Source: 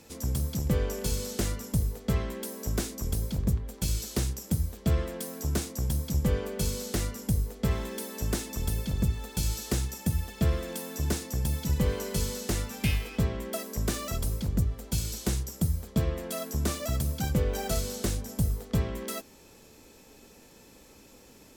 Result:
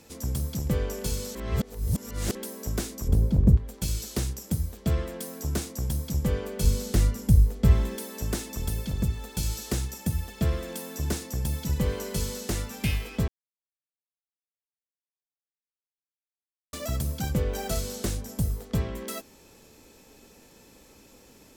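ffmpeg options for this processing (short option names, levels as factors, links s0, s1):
-filter_complex "[0:a]asettb=1/sr,asplit=3[s0][s1][s2];[s0]atrim=end=3.084[s3];[s1]atrim=start=3.08:end=3.57,asetpts=PTS-STARTPTS,afade=t=in:d=0.004:c=qsin,afade=t=out:st=0.486:d=0.004:c=qsin,tiltshelf=f=1100:g=9[s4];[s2]atrim=start=3.566[s5];[s3][s4]acrossfade=d=0.004:c1=hsin:c2=qsin[s6];[s6][s5]acrossfade=d=0.004:c1=qsin:c2=hsin,asettb=1/sr,asplit=3[s7][s8][s9];[s7]atrim=end=6.644[s10];[s8]atrim=start=6.64:end=7.96,asetpts=PTS-STARTPTS,afade=t=in:d=0.004:c=qsin,afade=t=out:st=1.316:d=0.004:c=qsin,lowshelf=f=170:g=12[s11];[s9]atrim=start=7.956[s12];[s10][s11]acrossfade=d=0.004:c1=hsin:c2=qsin[s13];[s13][s12]acrossfade=d=0.004:c1=qsin:c2=hsin,asplit=5[s14][s15][s16][s17][s18];[s14]atrim=end=1.352[s19];[s15]atrim=start=1.348:end=2.352,asetpts=PTS-STARTPTS,areverse[s20];[s16]atrim=start=2.348:end=13.28,asetpts=PTS-STARTPTS,afade=t=out:st=10.928:d=0.004:c=hsin[s21];[s17]atrim=start=13.28:end=16.73,asetpts=PTS-STARTPTS,volume=0[s22];[s18]atrim=start=16.73,asetpts=PTS-STARTPTS,afade=t=in:d=0.004:c=hsin[s23];[s19][s20]acrossfade=d=0.004:c1=hsin:c2=hsin[s24];[s21][s22][s23]concat=n=3:v=0:a=1[s25];[s24][s25]acrossfade=d=0.004:c1=hsin:c2=hsin"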